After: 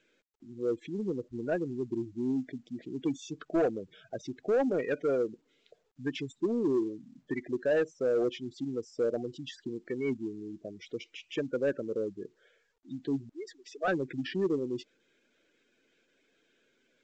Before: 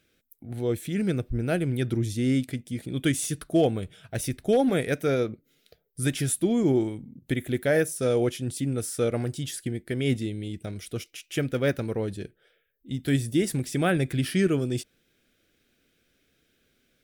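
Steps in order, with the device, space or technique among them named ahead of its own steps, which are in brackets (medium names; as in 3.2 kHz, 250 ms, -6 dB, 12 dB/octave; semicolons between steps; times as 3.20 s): spectral gate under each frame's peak -15 dB strong; 13.29–13.88 s: inverse Chebyshev high-pass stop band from 200 Hz, stop band 50 dB; telephone (band-pass 330–3300 Hz; saturation -21 dBFS, distortion -15 dB; µ-law 128 kbps 16 kHz)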